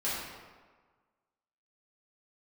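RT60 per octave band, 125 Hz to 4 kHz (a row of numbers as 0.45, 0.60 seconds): 1.4, 1.4, 1.4, 1.5, 1.2, 0.90 seconds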